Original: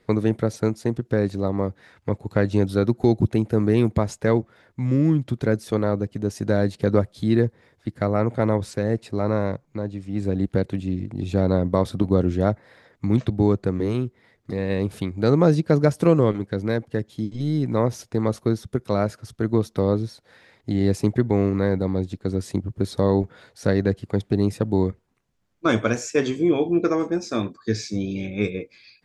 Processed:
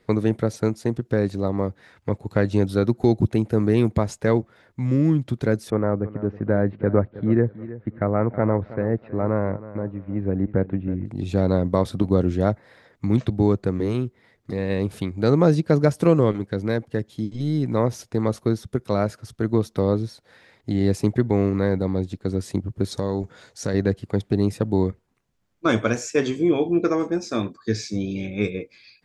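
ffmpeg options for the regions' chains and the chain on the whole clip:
ffmpeg -i in.wav -filter_complex "[0:a]asettb=1/sr,asplit=3[link_01][link_02][link_03];[link_01]atrim=end=5.704[link_04];[link_02]atrim=start=5.7:end=11.06,asetpts=PTS-STARTPTS,afade=type=in:duration=0.004:curve=qsin,afade=type=out:start_time=5.356:duration=0.004:curve=qsin,lowpass=frequency=2000:width=0.5412,lowpass=frequency=2000:width=1.3066,aecho=1:1:321|642|963:0.158|0.0412|0.0107,atrim=end_sample=236376[link_05];[link_03]atrim=start=11.056[link_06];[link_04][link_05]acrossfade=duration=0.004:curve1=hsin:curve2=qsin[link_07];[link_07][link_06]acrossfade=duration=0.004:curve1=qsin:curve2=hsin,asettb=1/sr,asplit=3[link_08][link_09][link_10];[link_08]atrim=end=22.914[link_11];[link_09]atrim=start=22.91:end=23.74,asetpts=PTS-STARTPTS,afade=type=in:duration=0.004:curve=qsin,afade=type=out:start_time=0.826:duration=0.004:curve=qsin,equalizer=frequency=6600:width=1.5:gain=10,acompressor=threshold=-23dB:ratio=2:attack=3.2:release=140:knee=1:detection=peak[link_12];[link_10]atrim=start=23.736[link_13];[link_11][link_12]acrossfade=duration=0.004:curve1=hsin:curve2=qsin[link_14];[link_14][link_13]acrossfade=duration=0.004:curve1=qsin:curve2=hsin" out.wav

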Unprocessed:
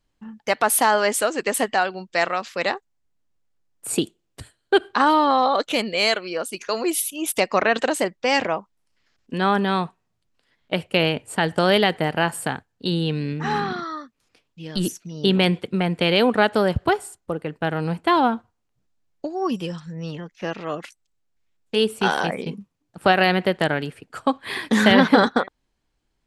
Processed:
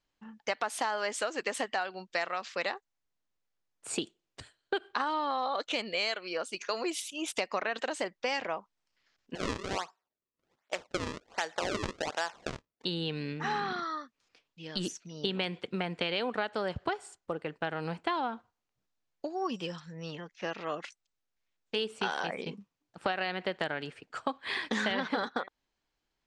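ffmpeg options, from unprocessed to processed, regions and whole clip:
ffmpeg -i in.wav -filter_complex "[0:a]asettb=1/sr,asplit=3[link_01][link_02][link_03];[link_01]atrim=end=9.354[link_04];[link_02]atrim=start=9.35:end=12.85,asetpts=PTS-STARTPTS,afade=type=in:duration=0.004:curve=qsin,afade=type=out:start_time=3.496:duration=0.004:curve=qsin,highpass=530,lowpass=2600,acrusher=samples=34:mix=1:aa=0.000001:lfo=1:lforange=54.4:lforate=1.3[link_05];[link_03]atrim=start=12.846[link_06];[link_04][link_05]acrossfade=duration=0.004:curve1=hsin:curve2=qsin[link_07];[link_07][link_06]acrossfade=duration=0.004:curve1=qsin:curve2=hsin,lowpass=frequency=7200:width=0.5412,lowpass=frequency=7200:width=1.3066,lowshelf=frequency=330:gain=-10.5,acompressor=threshold=-25dB:ratio=5,volume=-3.5dB" out.wav

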